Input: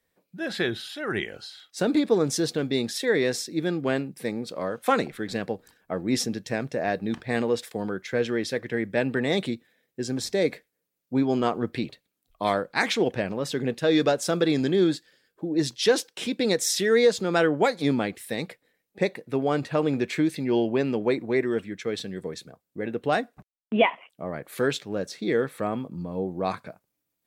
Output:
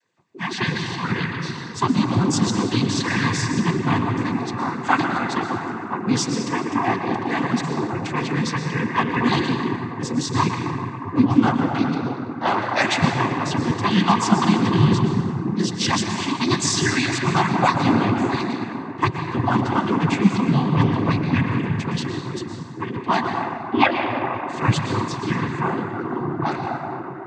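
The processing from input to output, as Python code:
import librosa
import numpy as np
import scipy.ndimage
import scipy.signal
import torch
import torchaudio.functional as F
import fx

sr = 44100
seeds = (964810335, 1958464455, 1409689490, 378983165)

y = fx.band_invert(x, sr, width_hz=500)
y = fx.rev_plate(y, sr, seeds[0], rt60_s=3.6, hf_ratio=0.3, predelay_ms=100, drr_db=2.0)
y = fx.noise_vocoder(y, sr, seeds[1], bands=16)
y = y * librosa.db_to_amplitude(4.5)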